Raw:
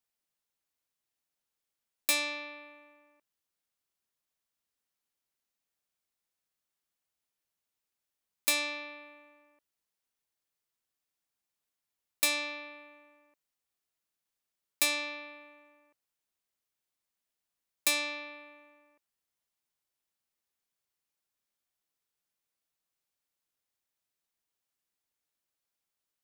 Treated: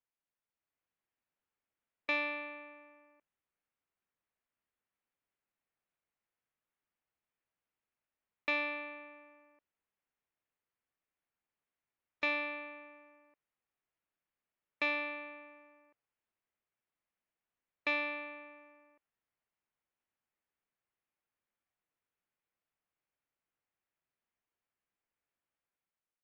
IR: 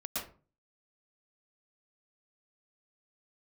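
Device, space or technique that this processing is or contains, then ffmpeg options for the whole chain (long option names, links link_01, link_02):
action camera in a waterproof case: -af "lowpass=frequency=2600:width=0.5412,lowpass=frequency=2600:width=1.3066,dynaudnorm=framelen=260:gausssize=5:maxgain=5.5dB,volume=-5dB" -ar 16000 -c:a aac -b:a 64k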